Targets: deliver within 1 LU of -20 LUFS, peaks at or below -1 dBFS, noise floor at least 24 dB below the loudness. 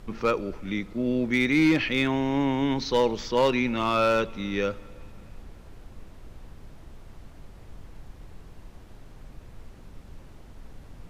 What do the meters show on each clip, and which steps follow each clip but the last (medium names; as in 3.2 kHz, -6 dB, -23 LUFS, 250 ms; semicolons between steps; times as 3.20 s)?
clipped samples 0.4%; clipping level -15.0 dBFS; noise floor -48 dBFS; noise floor target -49 dBFS; loudness -25.0 LUFS; peak level -15.0 dBFS; loudness target -20.0 LUFS
-> clip repair -15 dBFS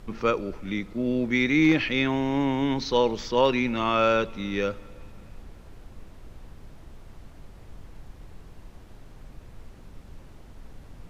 clipped samples 0.0%; noise floor -48 dBFS; noise floor target -49 dBFS
-> noise print and reduce 6 dB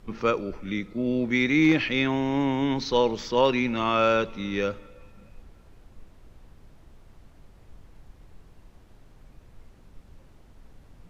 noise floor -54 dBFS; loudness -24.5 LUFS; peak level -8.0 dBFS; loudness target -20.0 LUFS
-> trim +4.5 dB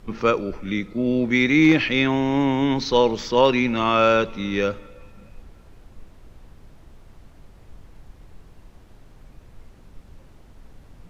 loudness -20.0 LUFS; peak level -3.5 dBFS; noise floor -49 dBFS